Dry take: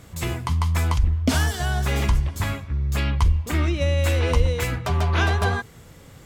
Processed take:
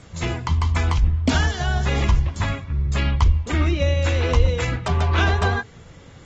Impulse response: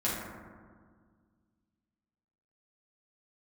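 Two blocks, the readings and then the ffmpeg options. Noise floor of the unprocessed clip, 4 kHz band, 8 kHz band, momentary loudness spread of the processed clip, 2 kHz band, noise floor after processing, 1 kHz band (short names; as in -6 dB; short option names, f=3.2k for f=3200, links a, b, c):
-47 dBFS, +1.5 dB, -2.0 dB, 6 LU, +2.0 dB, -45 dBFS, +2.0 dB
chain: -filter_complex "[0:a]acrossover=split=840|4400[a][b][c];[c]acrusher=bits=5:mode=log:mix=0:aa=0.000001[d];[a][b][d]amix=inputs=3:normalize=0,volume=1dB" -ar 48000 -c:a aac -b:a 24k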